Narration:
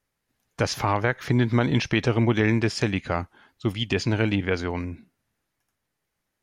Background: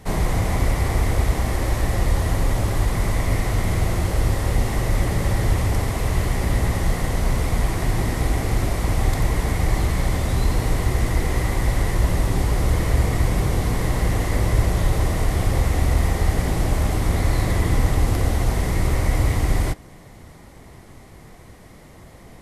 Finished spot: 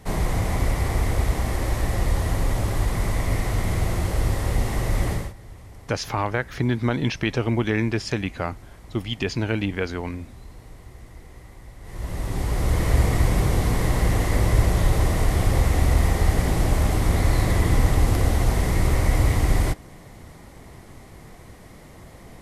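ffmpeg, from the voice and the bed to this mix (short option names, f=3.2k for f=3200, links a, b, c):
-filter_complex "[0:a]adelay=5300,volume=-1.5dB[a];[1:a]volume=20.5dB,afade=t=out:st=5.11:d=0.22:silence=0.0944061,afade=t=in:st=11.81:d=1.15:silence=0.0707946[b];[a][b]amix=inputs=2:normalize=0"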